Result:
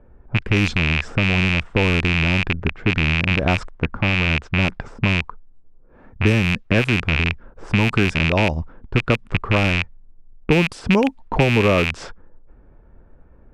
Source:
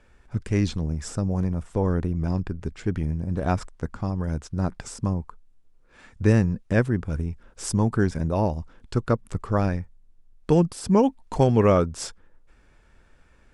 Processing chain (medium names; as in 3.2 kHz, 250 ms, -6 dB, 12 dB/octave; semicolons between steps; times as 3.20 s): rattle on loud lows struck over -28 dBFS, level -11 dBFS; level-controlled noise filter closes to 710 Hz, open at -15 dBFS; compression 3:1, threshold -24 dBFS, peak gain reduction 9 dB; trim +9 dB